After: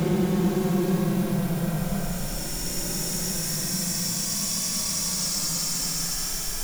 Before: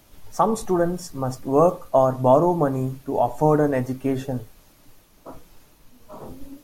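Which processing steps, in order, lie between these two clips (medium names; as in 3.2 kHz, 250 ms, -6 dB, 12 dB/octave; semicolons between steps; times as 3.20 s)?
jump at every zero crossing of -24.5 dBFS; Paulstretch 43×, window 0.05 s, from 0.93 s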